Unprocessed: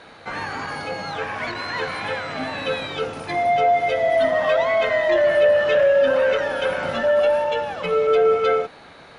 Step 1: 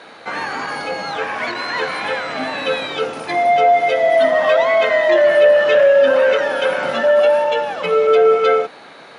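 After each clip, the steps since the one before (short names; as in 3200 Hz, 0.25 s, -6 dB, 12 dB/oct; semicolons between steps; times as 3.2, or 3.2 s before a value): HPF 220 Hz 12 dB/oct; gain +5 dB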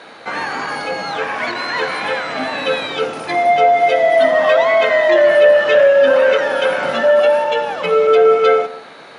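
reverb RT60 0.80 s, pre-delay 62 ms, DRR 15 dB; gain +1.5 dB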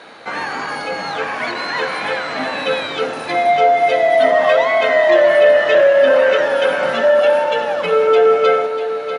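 feedback echo 0.643 s, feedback 46%, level -10 dB; gain -1 dB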